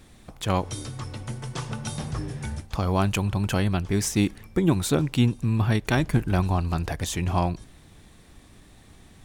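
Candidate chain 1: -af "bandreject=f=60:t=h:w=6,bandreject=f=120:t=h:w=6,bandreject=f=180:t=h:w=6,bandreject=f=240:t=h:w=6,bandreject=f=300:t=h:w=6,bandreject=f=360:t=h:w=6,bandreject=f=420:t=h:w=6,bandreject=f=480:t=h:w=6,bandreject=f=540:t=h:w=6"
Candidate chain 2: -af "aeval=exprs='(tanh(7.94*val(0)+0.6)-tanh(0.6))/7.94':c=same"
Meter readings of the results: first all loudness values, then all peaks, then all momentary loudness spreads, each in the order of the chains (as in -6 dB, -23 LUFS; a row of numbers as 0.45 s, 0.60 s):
-26.5 LUFS, -29.0 LUFS; -8.0 dBFS, -14.5 dBFS; 11 LU, 11 LU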